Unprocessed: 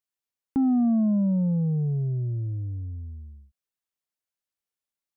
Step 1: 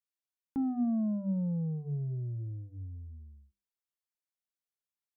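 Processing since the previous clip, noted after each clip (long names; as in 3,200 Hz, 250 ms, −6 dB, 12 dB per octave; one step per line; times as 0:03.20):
mains-hum notches 50/100/150/200/250/300/350/400/450 Hz
level −8 dB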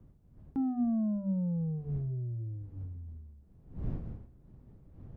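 wind on the microphone 130 Hz −46 dBFS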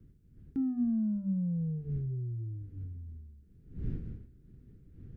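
flat-topped bell 800 Hz −15.5 dB 1.3 octaves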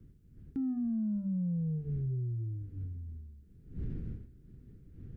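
brickwall limiter −30.5 dBFS, peak gain reduction 6.5 dB
level +1.5 dB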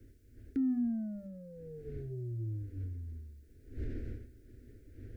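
drawn EQ curve 110 Hz 0 dB, 170 Hz −22 dB, 240 Hz +2 dB, 650 Hz +9 dB, 950 Hz −21 dB, 1,500 Hz +9 dB, 2,100 Hz +10 dB, 3,000 Hz +5 dB, 4,800 Hz +9 dB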